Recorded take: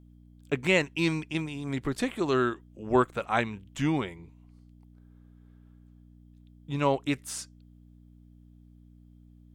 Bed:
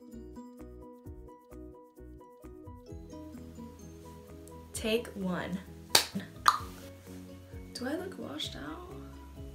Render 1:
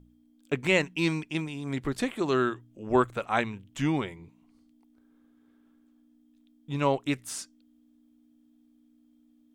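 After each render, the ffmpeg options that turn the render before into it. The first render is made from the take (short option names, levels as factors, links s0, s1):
-af "bandreject=f=60:t=h:w=4,bandreject=f=120:t=h:w=4,bandreject=f=180:t=h:w=4"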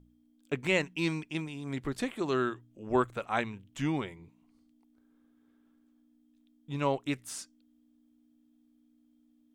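-af "volume=0.631"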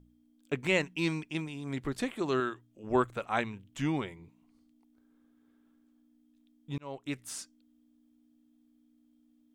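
-filter_complex "[0:a]asettb=1/sr,asplit=3[s0][s1][s2];[s0]atrim=end=2.404[s3];[s1]atrim=start=2.4:end=2.84,asetpts=PTS-STARTPTS,afade=t=in:d=0.004:c=qsin,afade=t=out:st=0.436:d=0.004:c=qsin,lowshelf=f=360:g=-6[s4];[s2]atrim=start=2.836[s5];[s3][s4]acrossfade=d=0.004:c1=hsin:c2=qsin[s6];[s6][s5]acrossfade=d=0.004:c1=qsin:c2=hsin,asplit=2[s7][s8];[s7]atrim=end=6.78,asetpts=PTS-STARTPTS,afade=t=out:st=6.776:d=0.004:c=hsin[s9];[s8]atrim=start=6.78,asetpts=PTS-STARTPTS,afade=t=in:d=0.5[s10];[s9][s10]concat=n=2:v=0:a=1"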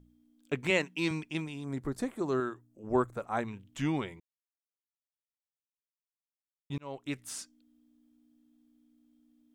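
-filter_complex "[0:a]asettb=1/sr,asplit=3[s0][s1][s2];[s0]atrim=end=0.704[s3];[s1]atrim=start=0.7:end=1.11,asetpts=PTS-STARTPTS,afade=t=in:d=0.004:c=qsin,afade=t=out:st=0.406:d=0.004:c=qsin,highpass=170[s4];[s2]atrim=start=1.106[s5];[s3][s4]acrossfade=d=0.004:c1=hsin:c2=qsin[s6];[s6][s5]acrossfade=d=0.004:c1=qsin:c2=hsin,asettb=1/sr,asplit=3[s7][s8][s9];[s7]atrim=end=1.654[s10];[s8]atrim=start=1.65:end=3.48,asetpts=PTS-STARTPTS,afade=t=in:d=0.004:c=qsin,afade=t=out:st=1.826:d=0.004:c=qsin,equalizer=f=2900:w=1.1:g=-14[s11];[s9]atrim=start=3.476[s12];[s10][s11]acrossfade=d=0.004:c1=hsin:c2=qsin[s13];[s13][s12]acrossfade=d=0.004:c1=qsin:c2=hsin,asplit=3[s14][s15][s16];[s14]atrim=end=4.2,asetpts=PTS-STARTPTS,afade=t=out:st=4.196:d=0.004:c=hsin[s17];[s15]atrim=start=4.2:end=6.7,asetpts=PTS-STARTPTS,volume=0[s18];[s16]atrim=start=6.7,asetpts=PTS-STARTPTS,afade=t=in:d=0.004:c=hsin[s19];[s17][s18][s19]concat=n=3:v=0:a=1"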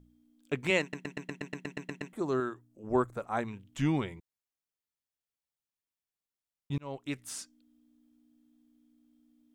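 -filter_complex "[0:a]asettb=1/sr,asplit=3[s0][s1][s2];[s0]atrim=end=3.784[s3];[s1]atrim=start=3.78:end=6.97,asetpts=PTS-STARTPTS,afade=t=in:d=0.004:c=qsin,afade=t=out:st=3.186:d=0.004:c=qsin,lowshelf=f=190:g=6.5[s4];[s2]atrim=start=6.966[s5];[s3][s4]acrossfade=d=0.004:c1=hsin:c2=qsin[s6];[s6][s5]acrossfade=d=0.004:c1=qsin:c2=hsin,asplit=12[s7][s8][s9][s10][s11][s12][s13][s14][s15][s16][s17][s18];[s7]atrim=end=0.932[s19];[s8]atrim=start=0.808:end=0.932[s20];[s9]atrim=start=0.808:end=0.932[s21];[s10]atrim=start=0.808:end=0.932[s22];[s11]atrim=start=0.808:end=0.932[s23];[s12]atrim=start=0.808:end=0.932[s24];[s13]atrim=start=0.808:end=0.932[s25];[s14]atrim=start=0.808:end=0.932[s26];[s15]atrim=start=0.808:end=0.932[s27];[s16]atrim=start=0.808:end=0.932[s28];[s17]atrim=start=0.808:end=0.932[s29];[s18]atrim=start=2.128[s30];[s19][s20]acrossfade=d=0.004:c1=hsin:c2=hsin[s31];[s31][s21]acrossfade=d=0.004:c1=hsin:c2=hsin[s32];[s32][s22]acrossfade=d=0.004:c1=hsin:c2=hsin[s33];[s33][s23]acrossfade=d=0.004:c1=hsin:c2=hsin[s34];[s34][s24]acrossfade=d=0.004:c1=hsin:c2=hsin[s35];[s35][s25]acrossfade=d=0.004:c1=hsin:c2=hsin[s36];[s36][s26]acrossfade=d=0.004:c1=hsin:c2=hsin[s37];[s37][s27]acrossfade=d=0.004:c1=hsin:c2=hsin[s38];[s38][s28]acrossfade=d=0.004:c1=hsin:c2=hsin[s39];[s39][s29]acrossfade=d=0.004:c1=hsin:c2=hsin[s40];[s40][s30]acrossfade=d=0.004:c1=hsin:c2=hsin"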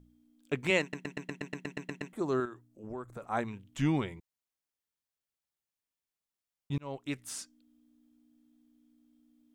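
-filter_complex "[0:a]asettb=1/sr,asplit=3[s0][s1][s2];[s0]atrim=end=2.454[s3];[s1]atrim=start=2.45:end=3.22,asetpts=PTS-STARTPTS,afade=t=in:d=0.004:c=qsin,afade=t=out:st=0.766:d=0.004:c=qsin,acompressor=threshold=0.0112:ratio=4:attack=3.2:release=140:knee=1:detection=peak[s4];[s2]atrim=start=3.216[s5];[s3][s4]acrossfade=d=0.004:c1=hsin:c2=qsin[s6];[s6][s5]acrossfade=d=0.004:c1=qsin:c2=hsin"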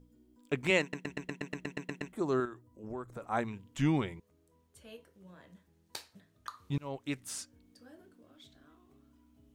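-filter_complex "[1:a]volume=0.0944[s0];[0:a][s0]amix=inputs=2:normalize=0"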